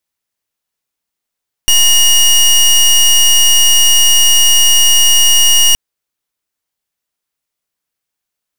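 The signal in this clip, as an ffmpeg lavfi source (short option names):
-f lavfi -i "aevalsrc='0.422*(2*lt(mod(2870*t,1),0.21)-1)':d=4.07:s=44100"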